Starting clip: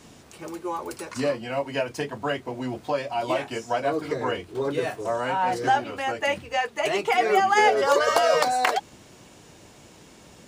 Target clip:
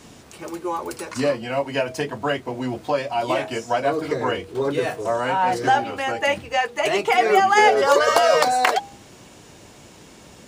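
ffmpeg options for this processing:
ffmpeg -i in.wav -af "bandreject=frequency=160.3:width_type=h:width=4,bandreject=frequency=320.6:width_type=h:width=4,bandreject=frequency=480.9:width_type=h:width=4,bandreject=frequency=641.2:width_type=h:width=4,bandreject=frequency=801.5:width_type=h:width=4,volume=4dB" out.wav

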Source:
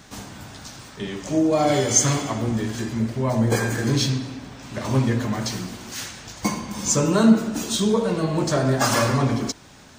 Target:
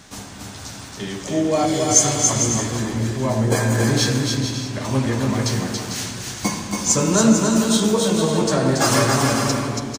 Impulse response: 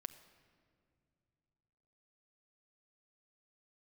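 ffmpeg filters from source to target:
-filter_complex "[0:a]asettb=1/sr,asplit=3[link_01][link_02][link_03];[link_01]atrim=end=1.654[link_04];[link_02]atrim=start=1.65:end=2.27,asetpts=PTS-STARTPTS,afade=type=in:duration=0.004:curve=qsin,afade=type=out:start_time=0.616:duration=0.004:curve=qsin,acrossover=split=150|3000[link_05][link_06][link_07];[link_06]acompressor=threshold=-26dB:ratio=6[link_08];[link_05][link_08][link_07]amix=inputs=3:normalize=0[link_09];[link_03]atrim=start=2.266[link_10];[link_04][link_09]acrossfade=duration=0.004:curve1=hsin:curve2=qsin[link_11];[link_11][link_10]acrossfade=duration=0.004:curve1=qsin:curve2=hsin,aecho=1:1:280|448|548.8|609.3|645.6:0.631|0.398|0.251|0.158|0.1,asplit=2[link_12][link_13];[1:a]atrim=start_sample=2205,asetrate=24255,aresample=44100,highshelf=frequency=5100:gain=6.5[link_14];[link_13][link_14]afir=irnorm=-1:irlink=0,volume=9dB[link_15];[link_12][link_15]amix=inputs=2:normalize=0,volume=-10dB"

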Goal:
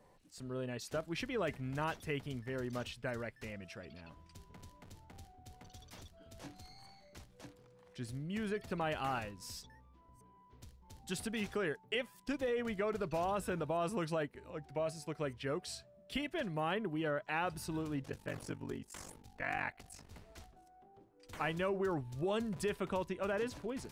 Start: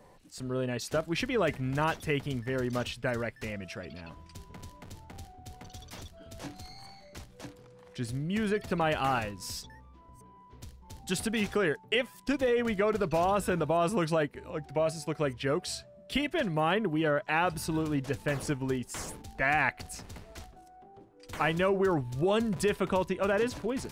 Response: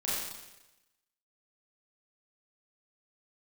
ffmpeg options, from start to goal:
-filter_complex "[0:a]asettb=1/sr,asplit=3[link_01][link_02][link_03];[link_01]atrim=end=18.024[link_04];[link_02]atrim=start=18.02:end=20.12,asetpts=PTS-STARTPTS,afade=type=in:duration=0.004:curve=qsin,afade=type=out:start_time=2.096:duration=0.004:curve=qsin,aeval=exprs='val(0)*sin(2*PI*24*n/s)':channel_layout=same[link_05];[link_03]atrim=start=20.116[link_06];[link_04][link_05]acrossfade=duration=0.004:curve1=hsin:curve2=qsin[link_07];[link_07][link_06]acrossfade=duration=0.004:curve1=qsin:curve2=hsin,volume=-8.5dB"

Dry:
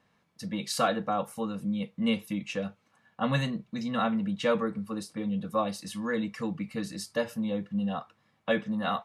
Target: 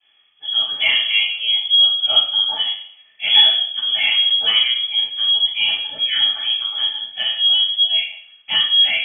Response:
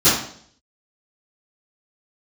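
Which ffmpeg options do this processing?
-filter_complex "[0:a]asettb=1/sr,asplit=3[link_01][link_02][link_03];[link_01]atrim=end=4.684[link_04];[link_02]atrim=start=4.68:end=6.86,asetpts=PTS-STARTPTS,afade=type=in:duration=0.004:curve=qsin,afade=type=out:start_time=2.176:duration=0.004:curve=qsin,aemphasis=mode=production:type=75fm[link_05];[link_03]atrim=start=6.856[link_06];[link_04][link_05]acrossfade=duration=0.004:curve1=hsin:curve2=qsin[link_07];[link_07][link_06]acrossfade=duration=0.004:curve1=qsin:curve2=hsin[link_08];[1:a]atrim=start_sample=2205,asetrate=41454,aresample=44100[link_09];[link_08][link_09]afir=irnorm=-1:irlink=0,lowpass=frequency=3000:width_type=q:width=0.5098,lowpass=frequency=3000:width_type=q:width=0.6013,lowpass=frequency=3000:width_type=q:width=0.9,lowpass=frequency=3000:width_type=q:width=2.563,afreqshift=-3500,volume=-13.5dB"

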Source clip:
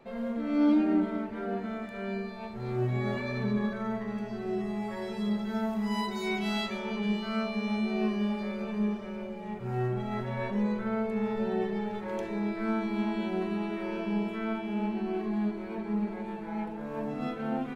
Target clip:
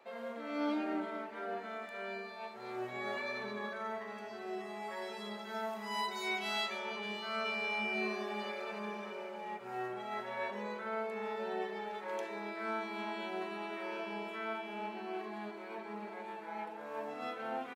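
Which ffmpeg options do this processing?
ffmpeg -i in.wav -filter_complex "[0:a]highpass=570,asplit=3[link_01][link_02][link_03];[link_01]afade=type=out:start_time=7.44:duration=0.02[link_04];[link_02]aecho=1:1:70|157.5|266.9|403.6|574.5:0.631|0.398|0.251|0.158|0.1,afade=type=in:start_time=7.44:duration=0.02,afade=type=out:start_time=9.56:duration=0.02[link_05];[link_03]afade=type=in:start_time=9.56:duration=0.02[link_06];[link_04][link_05][link_06]amix=inputs=3:normalize=0,volume=-1dB" out.wav

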